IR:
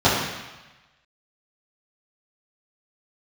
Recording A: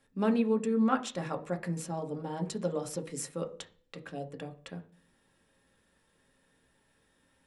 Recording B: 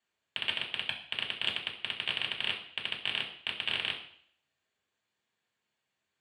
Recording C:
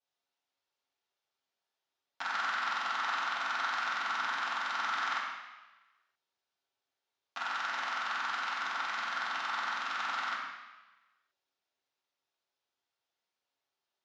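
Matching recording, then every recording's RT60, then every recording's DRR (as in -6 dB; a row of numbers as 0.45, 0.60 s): C; 0.40, 0.60, 1.1 s; 5.0, -3.5, -12.0 dB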